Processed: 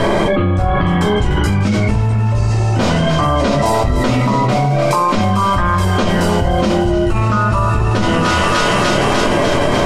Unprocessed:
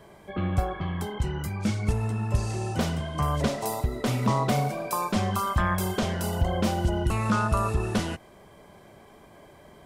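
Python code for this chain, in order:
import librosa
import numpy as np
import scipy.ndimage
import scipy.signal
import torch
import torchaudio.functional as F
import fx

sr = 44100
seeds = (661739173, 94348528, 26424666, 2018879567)

y = scipy.signal.sosfilt(scipy.signal.butter(2, 6200.0, 'lowpass', fs=sr, output='sos'), x)
y = fx.notch(y, sr, hz=3500.0, q=20.0)
y = fx.echo_thinned(y, sr, ms=298, feedback_pct=71, hz=1100.0, wet_db=-11)
y = fx.room_shoebox(y, sr, seeds[0], volume_m3=160.0, walls='furnished', distance_m=2.7)
y = fx.env_flatten(y, sr, amount_pct=100)
y = y * 10.0 ** (-1.0 / 20.0)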